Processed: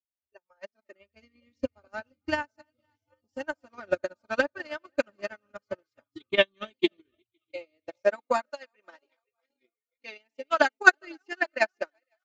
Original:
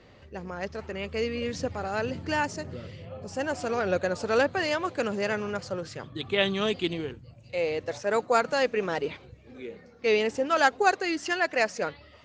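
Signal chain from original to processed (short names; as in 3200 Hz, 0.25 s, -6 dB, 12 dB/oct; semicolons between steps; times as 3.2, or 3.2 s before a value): regenerating reverse delay 0.251 s, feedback 65%, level -13.5 dB; LPF 6900 Hz 12 dB/oct; spectral noise reduction 25 dB; 8.5–10.6 HPF 700 Hz 6 dB/oct; dynamic EQ 1400 Hz, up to +3 dB, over -37 dBFS, Q 1.8; comb 3.3 ms, depth 95%; transient shaper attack +11 dB, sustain -9 dB; upward expander 2.5:1, over -30 dBFS; gain -2.5 dB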